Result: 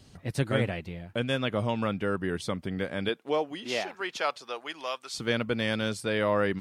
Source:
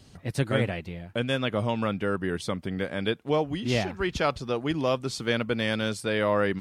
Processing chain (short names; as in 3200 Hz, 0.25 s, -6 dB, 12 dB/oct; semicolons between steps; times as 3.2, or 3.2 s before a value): 3.08–5.13 HPF 270 Hz -> 1100 Hz 12 dB/oct; gain -1.5 dB